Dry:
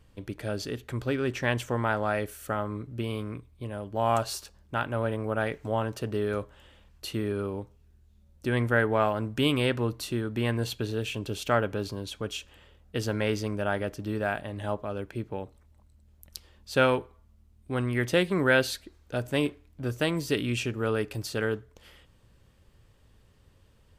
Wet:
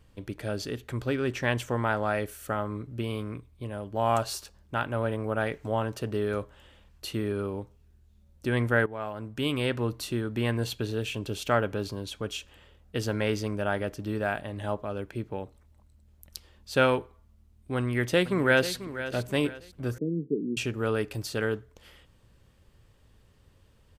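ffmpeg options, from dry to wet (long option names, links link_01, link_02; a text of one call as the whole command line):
ffmpeg -i in.wav -filter_complex "[0:a]asplit=2[link_01][link_02];[link_02]afade=type=in:start_time=17.76:duration=0.01,afade=type=out:start_time=18.73:duration=0.01,aecho=0:1:490|980|1470|1960:0.237137|0.0829981|0.0290493|0.0101673[link_03];[link_01][link_03]amix=inputs=2:normalize=0,asettb=1/sr,asplit=3[link_04][link_05][link_06];[link_04]atrim=end=19.984[link_07];[link_05]atrim=start=19.98:end=20.57,asetpts=PTS-STARTPTS,afade=type=in:duration=0.004:curve=qsin,afade=type=out:start_time=0.586:duration=0.004:curve=qsin,asuperpass=centerf=260:order=12:qfactor=0.83[link_08];[link_06]atrim=start=20.566[link_09];[link_07][link_08]acrossfade=duration=0.004:curve1=hsin:curve2=qsin[link_10];[link_10][link_09]acrossfade=duration=0.004:curve1=qsin:curve2=hsin,asplit=2[link_11][link_12];[link_11]atrim=end=8.86,asetpts=PTS-STARTPTS,afade=type=out:start_time=8.856:duration=0.004:curve=hsin:silence=0.177828[link_13];[link_12]atrim=start=8.86,asetpts=PTS-STARTPTS,afade=type=in:duration=1.09:silence=0.177828[link_14];[link_13][link_14]concat=n=2:v=0:a=1" out.wav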